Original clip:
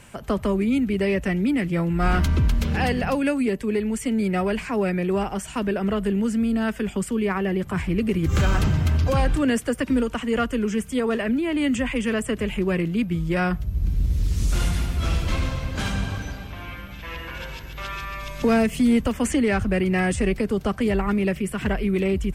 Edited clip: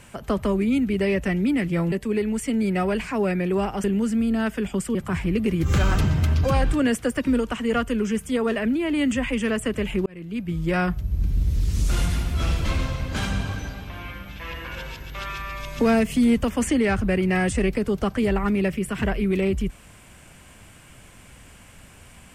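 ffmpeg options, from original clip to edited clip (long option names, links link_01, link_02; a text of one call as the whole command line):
ffmpeg -i in.wav -filter_complex "[0:a]asplit=5[link_01][link_02][link_03][link_04][link_05];[link_01]atrim=end=1.922[link_06];[link_02]atrim=start=3.498:end=5.422[link_07];[link_03]atrim=start=6.058:end=7.172[link_08];[link_04]atrim=start=7.578:end=12.69,asetpts=PTS-STARTPTS,afade=type=out:start_time=5.108:duration=0.004:curve=hsin[link_09];[link_05]atrim=start=12.69,asetpts=PTS-STARTPTS,afade=type=in:duration=0.61[link_10];[link_06][link_07]acrossfade=duration=0.004:curve1=hsin:curve2=hsin[link_11];[link_11][link_08]acrossfade=duration=0.004:curve1=hsin:curve2=hsin[link_12];[link_09][link_10]concat=n=2:v=0:a=1[link_13];[link_12][link_13]acrossfade=duration=0.004:curve1=hsin:curve2=hsin" out.wav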